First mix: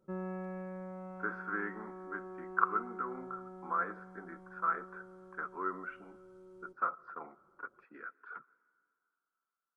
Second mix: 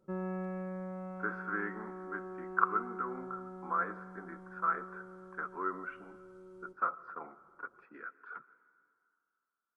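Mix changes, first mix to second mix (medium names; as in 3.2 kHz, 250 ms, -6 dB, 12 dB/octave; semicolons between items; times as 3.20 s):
speech: send +7.0 dB; background: send on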